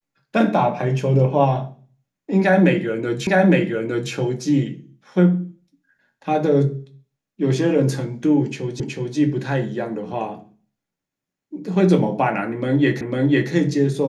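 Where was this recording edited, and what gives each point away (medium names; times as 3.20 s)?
3.27 s: repeat of the last 0.86 s
8.80 s: repeat of the last 0.37 s
13.01 s: repeat of the last 0.5 s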